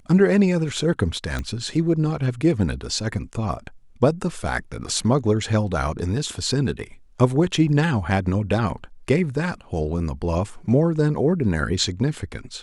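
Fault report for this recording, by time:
1.39 s: pop -15 dBFS

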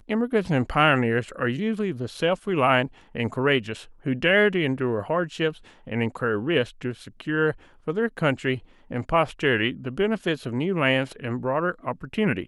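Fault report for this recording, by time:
2.17 s: dropout 4.2 ms

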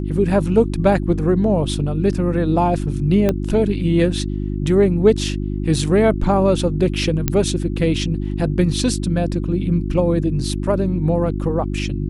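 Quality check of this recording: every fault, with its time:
hum 50 Hz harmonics 7 -23 dBFS
3.29 s: pop -6 dBFS
7.28 s: pop -3 dBFS

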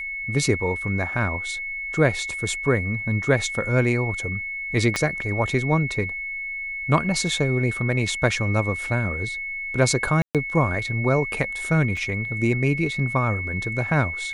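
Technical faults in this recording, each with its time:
whine 2.2 kHz -28 dBFS
4.96 s: pop -9 dBFS
10.22–10.35 s: dropout 127 ms
11.97 s: dropout 2.3 ms

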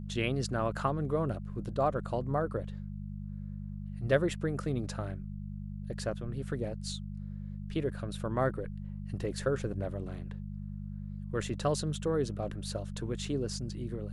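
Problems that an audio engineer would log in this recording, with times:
hum 50 Hz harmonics 4 -40 dBFS

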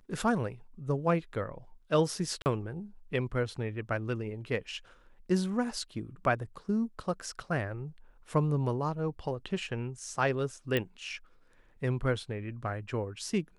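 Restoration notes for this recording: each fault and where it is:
2.42–2.46 s: dropout 39 ms
10.77 s: pop -16 dBFS

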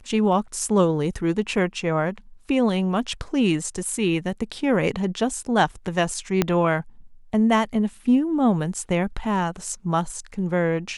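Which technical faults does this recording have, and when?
6.42 s: pop -5 dBFS

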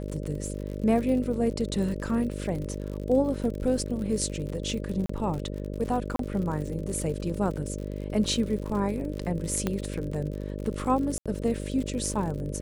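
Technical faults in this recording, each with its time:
buzz 50 Hz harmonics 12 -34 dBFS
crackle 68 per s -34 dBFS
5.06–5.09 s: dropout 34 ms
6.16–6.19 s: dropout 33 ms
9.67 s: pop -13 dBFS
11.18–11.26 s: dropout 76 ms

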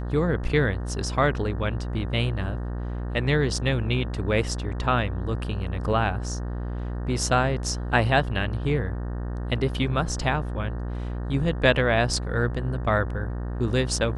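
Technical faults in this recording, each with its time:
buzz 60 Hz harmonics 31 -30 dBFS

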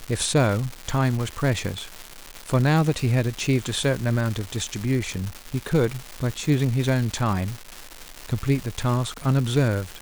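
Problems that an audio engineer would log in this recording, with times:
crackle 440 per s -27 dBFS

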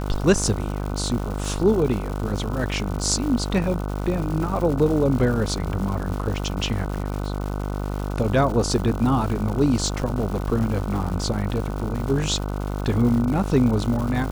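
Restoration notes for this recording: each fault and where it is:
buzz 50 Hz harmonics 30 -27 dBFS
crackle 280 per s -30 dBFS

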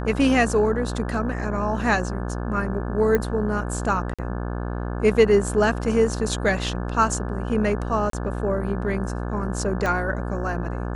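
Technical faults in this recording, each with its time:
buzz 60 Hz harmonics 29 -28 dBFS
3.15 s: pop -9 dBFS
4.14–4.19 s: dropout 46 ms
8.10–8.13 s: dropout 33 ms
9.86 s: pop -13 dBFS

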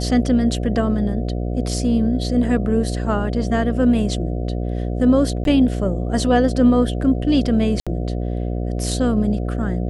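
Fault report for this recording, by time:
buzz 60 Hz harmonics 12 -23 dBFS
5.44–5.45 s: dropout 12 ms
7.80–7.87 s: dropout 66 ms

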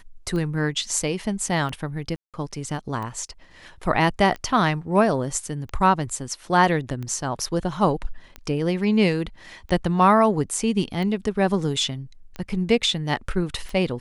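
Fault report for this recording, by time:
tick 45 rpm -21 dBFS
2.16–2.34 s: dropout 177 ms

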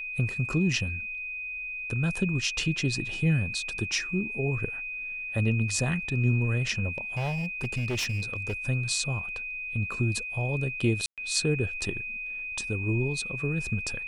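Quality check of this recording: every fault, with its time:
whine 2.5 kHz -33 dBFS
6.98–8.54 s: clipped -25.5 dBFS
11.06–11.18 s: dropout 117 ms

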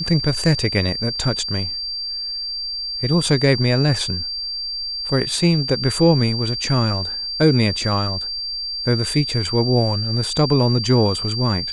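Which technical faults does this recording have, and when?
whine 4.7 kHz -24 dBFS

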